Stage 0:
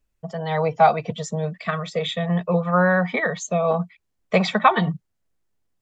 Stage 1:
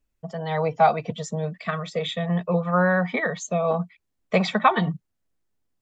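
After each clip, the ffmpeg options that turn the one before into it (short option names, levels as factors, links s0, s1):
-af "equalizer=f=270:t=o:w=0.55:g=3.5,volume=0.75"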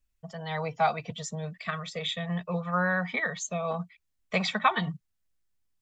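-af "equalizer=f=370:w=0.4:g=-11"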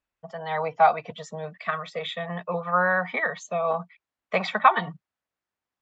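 -af "bandpass=f=870:t=q:w=0.74:csg=0,volume=2.37"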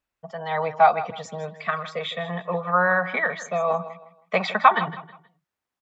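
-af "aecho=1:1:159|318|477:0.188|0.0565|0.017,volume=1.26"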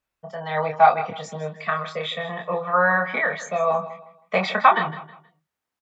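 -filter_complex "[0:a]asplit=2[s0][s1];[s1]adelay=26,volume=0.631[s2];[s0][s2]amix=inputs=2:normalize=0"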